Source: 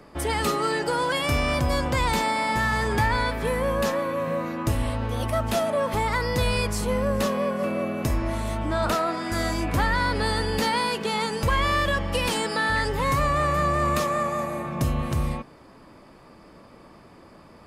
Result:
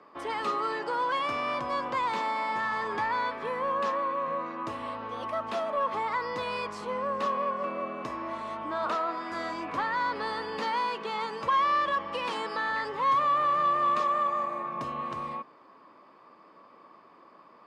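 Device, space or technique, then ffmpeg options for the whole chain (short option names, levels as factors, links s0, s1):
intercom: -af "highpass=300,lowpass=3900,equalizer=f=1100:t=o:w=0.32:g=11.5,asoftclip=type=tanh:threshold=0.316,volume=0.447"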